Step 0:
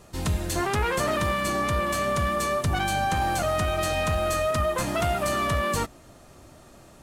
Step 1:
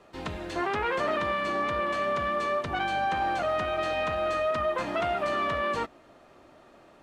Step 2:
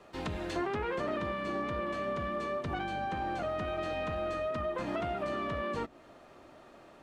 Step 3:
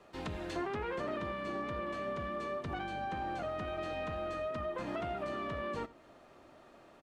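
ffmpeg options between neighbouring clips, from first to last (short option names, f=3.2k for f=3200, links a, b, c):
-filter_complex "[0:a]acrossover=split=8700[a][b];[b]acompressor=threshold=-51dB:ratio=4:attack=1:release=60[c];[a][c]amix=inputs=2:normalize=0,acrossover=split=240 3800:gain=0.2 1 0.126[d][e][f];[d][e][f]amix=inputs=3:normalize=0,volume=-1.5dB"
-filter_complex "[0:a]acrossover=split=440[a][b];[b]acompressor=threshold=-37dB:ratio=4[c];[a][c]amix=inputs=2:normalize=0"
-af "aecho=1:1:84:0.1,volume=-3.5dB"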